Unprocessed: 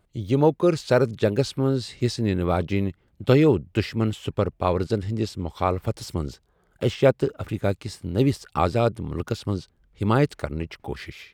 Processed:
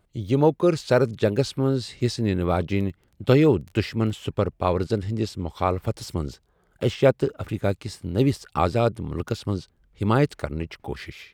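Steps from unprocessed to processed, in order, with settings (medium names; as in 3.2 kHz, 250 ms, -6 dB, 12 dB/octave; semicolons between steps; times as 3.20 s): 2.68–4.25 s: crackle 17 per s -34 dBFS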